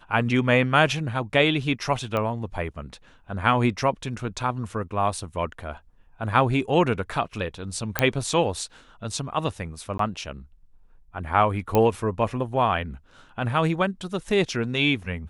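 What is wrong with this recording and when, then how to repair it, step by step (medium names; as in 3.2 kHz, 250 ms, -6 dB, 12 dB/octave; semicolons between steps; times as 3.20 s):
2.17 s: pop -14 dBFS
7.99 s: pop -4 dBFS
9.98–9.99 s: dropout 13 ms
11.75 s: pop -8 dBFS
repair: de-click; interpolate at 9.98 s, 13 ms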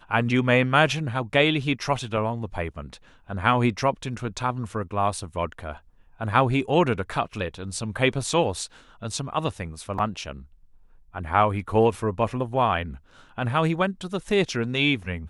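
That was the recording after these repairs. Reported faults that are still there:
nothing left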